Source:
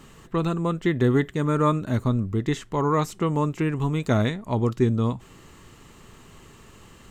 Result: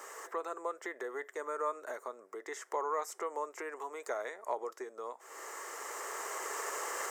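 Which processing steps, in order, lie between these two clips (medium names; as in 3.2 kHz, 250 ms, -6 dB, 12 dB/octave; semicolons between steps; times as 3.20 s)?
recorder AGC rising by 8.2 dB/s; high-order bell 3.3 kHz -13 dB 1 oct; compression 6:1, threshold -35 dBFS, peak gain reduction 18 dB; steep high-pass 450 Hz 36 dB/octave; trim +6 dB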